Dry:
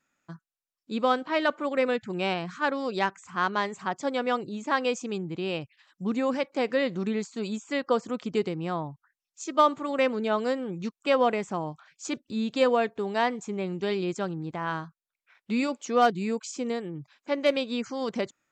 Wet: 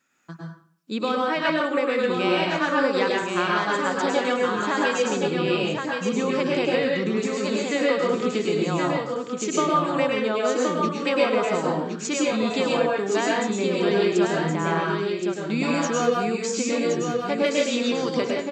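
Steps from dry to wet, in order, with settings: compression, threshold -27 dBFS, peak gain reduction 11 dB; high-pass 200 Hz 6 dB/octave; peaking EQ 750 Hz -4 dB 0.98 oct; delay 1070 ms -5 dB; plate-style reverb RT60 0.55 s, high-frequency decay 0.75×, pre-delay 95 ms, DRR -2.5 dB; trim +6.5 dB

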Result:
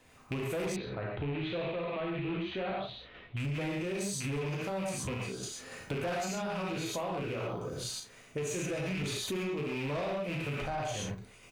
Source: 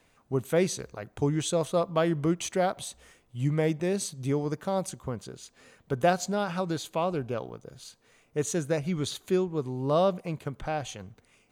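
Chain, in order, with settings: rattle on loud lows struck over -34 dBFS, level -25 dBFS; gated-style reverb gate 160 ms flat, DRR -3 dB; random-step tremolo; doubling 36 ms -10.5 dB; saturation -22.5 dBFS, distortion -11 dB; peak limiter -28.5 dBFS, peak gain reduction 6 dB; compression 4:1, threshold -39 dBFS, peak gain reduction 7.5 dB; 0.76–3.37 s: Chebyshev low-pass 4 kHz, order 5; trim +5.5 dB

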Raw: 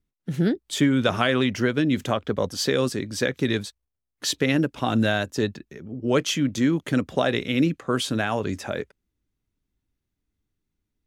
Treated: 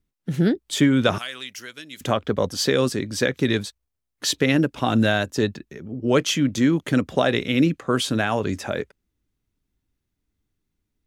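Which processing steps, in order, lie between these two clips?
1.18–2.01 s: pre-emphasis filter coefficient 0.97; trim +2.5 dB

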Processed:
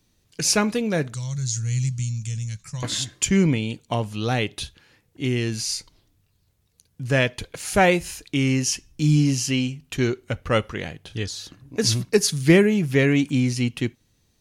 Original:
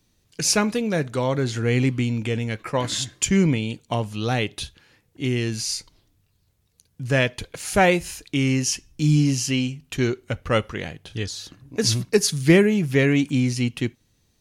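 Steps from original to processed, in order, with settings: 1.14–2.83 s: FFT filter 170 Hz 0 dB, 280 Hz -28 dB, 470 Hz -27 dB, 3.1 kHz -11 dB, 6.6 kHz +13 dB, 13 kHz -6 dB

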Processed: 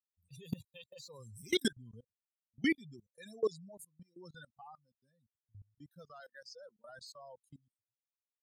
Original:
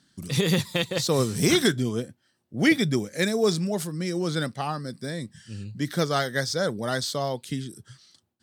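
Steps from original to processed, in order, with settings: expander on every frequency bin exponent 3; 6.20–6.89 s: high-pass 250 Hz 24 dB/octave; level held to a coarse grid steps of 24 dB; trim -3.5 dB

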